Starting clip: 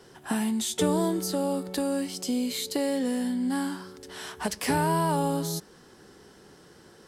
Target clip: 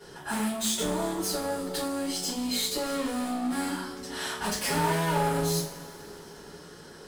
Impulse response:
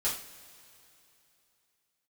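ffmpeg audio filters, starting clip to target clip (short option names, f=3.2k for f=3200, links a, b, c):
-filter_complex "[0:a]asettb=1/sr,asplit=3[a][b][c];[a]atrim=end=0.674[d];[b]atrim=start=0.67:end=2.85,asetpts=PTS-STARTPTS,afade=t=in:d=0.004:c=qsin,afade=t=out:st=2.176:d=0.004:c=qsin,acompressor=threshold=-28dB:ratio=6[e];[c]atrim=start=2.846[f];[d][e]acrossfade=d=0.004:c1=hsin:c2=qsin[g];[g][f]acrossfade=d=0.004:c1=qsin:c2=hsin,volume=31.5dB,asoftclip=hard,volume=-31.5dB[h];[1:a]atrim=start_sample=2205[i];[h][i]afir=irnorm=-1:irlink=0"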